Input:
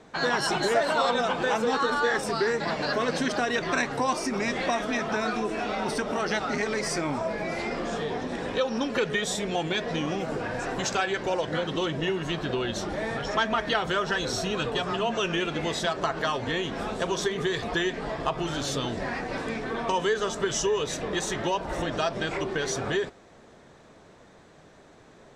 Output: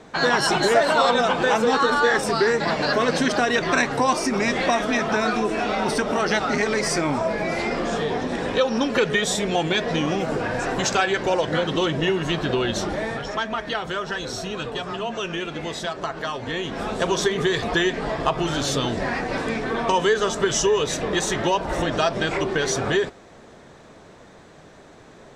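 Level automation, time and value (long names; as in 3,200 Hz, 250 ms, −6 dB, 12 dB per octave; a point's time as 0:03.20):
0:12.85 +6 dB
0:13.40 −1 dB
0:16.35 −1 dB
0:17.07 +6 dB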